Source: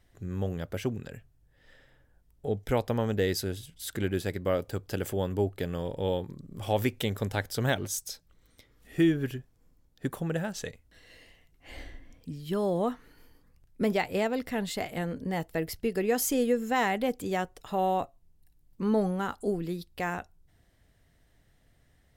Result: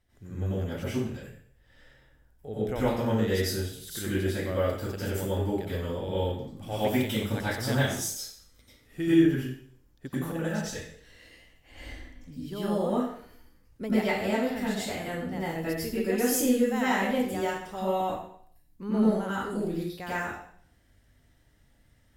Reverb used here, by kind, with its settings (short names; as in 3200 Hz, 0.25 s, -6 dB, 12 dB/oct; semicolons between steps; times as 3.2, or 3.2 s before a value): plate-style reverb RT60 0.57 s, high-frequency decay 1×, pre-delay 80 ms, DRR -9.5 dB; gain -8.5 dB